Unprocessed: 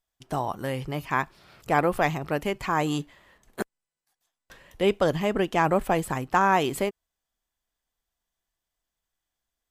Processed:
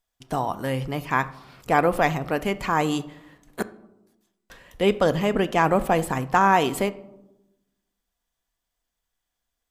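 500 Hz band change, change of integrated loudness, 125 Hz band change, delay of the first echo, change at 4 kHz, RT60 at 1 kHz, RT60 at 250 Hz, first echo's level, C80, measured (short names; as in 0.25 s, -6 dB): +2.5 dB, +2.5 dB, +2.5 dB, none, +2.5 dB, 0.85 s, 1.3 s, none, 20.5 dB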